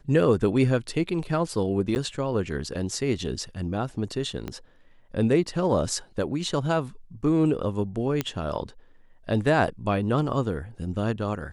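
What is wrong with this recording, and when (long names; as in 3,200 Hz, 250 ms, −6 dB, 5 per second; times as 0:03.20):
0:01.95–0:01.96: drop-out 9.8 ms
0:04.48: click −19 dBFS
0:08.21: click −11 dBFS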